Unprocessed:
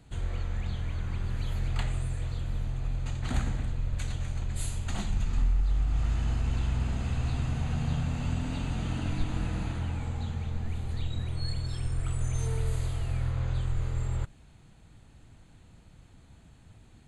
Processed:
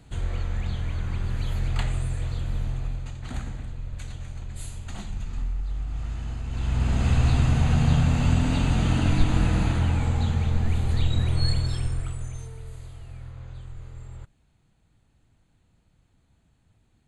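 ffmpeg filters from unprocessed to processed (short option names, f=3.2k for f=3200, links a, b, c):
-af "volume=17dB,afade=t=out:st=2.72:d=0.4:silence=0.421697,afade=t=in:st=6.49:d=0.6:silence=0.223872,afade=t=out:st=11.45:d=0.67:silence=0.281838,afade=t=out:st=12.12:d=0.39:silence=0.375837"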